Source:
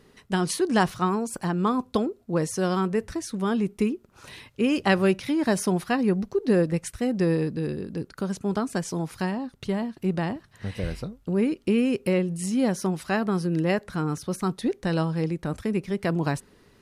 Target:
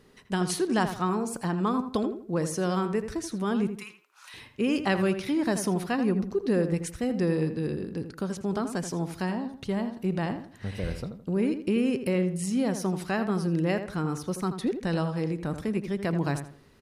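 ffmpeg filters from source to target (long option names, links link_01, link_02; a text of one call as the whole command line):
ffmpeg -i in.wav -filter_complex "[0:a]asettb=1/sr,asplit=3[link_01][link_02][link_03];[link_01]atrim=end=3.714[link_04];[link_02]atrim=start=3.71:end=4.34,asetpts=PTS-STARTPTS,afade=type=in:duration=0.004:curve=qsin,afade=type=out:start_time=0.626:duration=0.004:curve=qsin,highpass=frequency=930:width=0.5412,highpass=frequency=930:width=1.3066[link_05];[link_03]atrim=start=4.336[link_06];[link_04][link_05]acrossfade=duration=0.004:curve1=hsin:curve2=qsin[link_07];[link_07][link_06]acrossfade=duration=0.004:curve1=qsin:curve2=hsin,asplit=2[link_08][link_09];[link_09]alimiter=limit=-18.5dB:level=0:latency=1,volume=-2dB[link_10];[link_08][link_10]amix=inputs=2:normalize=0,asplit=2[link_11][link_12];[link_12]adelay=82,lowpass=frequency=2500:poles=1,volume=-9dB,asplit=2[link_13][link_14];[link_14]adelay=82,lowpass=frequency=2500:poles=1,volume=0.33,asplit=2[link_15][link_16];[link_16]adelay=82,lowpass=frequency=2500:poles=1,volume=0.33,asplit=2[link_17][link_18];[link_18]adelay=82,lowpass=frequency=2500:poles=1,volume=0.33[link_19];[link_11][link_13][link_15][link_17][link_19]amix=inputs=5:normalize=0,volume=-7dB" out.wav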